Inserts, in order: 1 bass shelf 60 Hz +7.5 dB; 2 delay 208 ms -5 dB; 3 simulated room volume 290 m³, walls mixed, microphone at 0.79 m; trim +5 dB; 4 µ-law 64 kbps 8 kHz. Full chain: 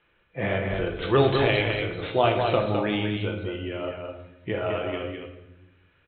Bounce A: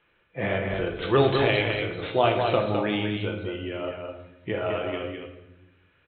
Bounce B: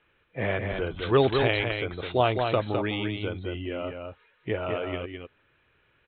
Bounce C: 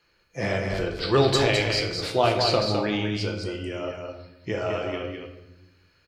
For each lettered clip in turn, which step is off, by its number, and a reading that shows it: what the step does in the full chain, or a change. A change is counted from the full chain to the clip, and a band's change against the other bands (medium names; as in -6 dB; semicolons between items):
1, 125 Hz band -1.5 dB; 3, loudness change -2.0 LU; 4, 4 kHz band +5.5 dB